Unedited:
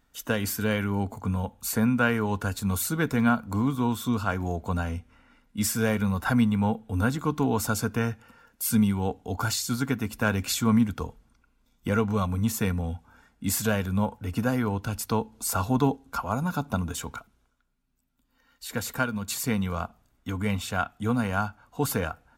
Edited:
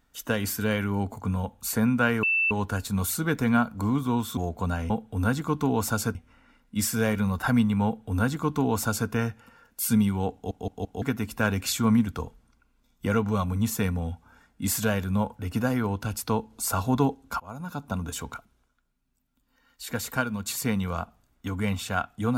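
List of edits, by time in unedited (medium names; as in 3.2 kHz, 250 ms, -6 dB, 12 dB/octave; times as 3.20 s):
2.23 s: add tone 2.66 kHz -20.5 dBFS 0.28 s
4.09–4.44 s: delete
6.67–7.92 s: copy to 4.97 s
9.16 s: stutter in place 0.17 s, 4 plays
16.22–17.02 s: fade in, from -17.5 dB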